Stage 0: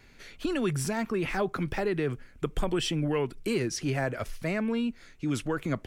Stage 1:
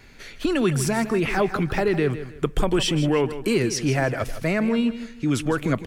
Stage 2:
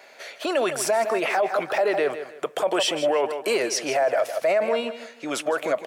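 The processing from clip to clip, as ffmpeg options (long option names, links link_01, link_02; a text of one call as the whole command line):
ffmpeg -i in.wav -af "aecho=1:1:158|316|474:0.237|0.0711|0.0213,volume=7dB" out.wav
ffmpeg -i in.wav -af "highpass=frequency=620:width_type=q:width=4.9,alimiter=limit=-15.5dB:level=0:latency=1:release=24,volume=1.5dB" out.wav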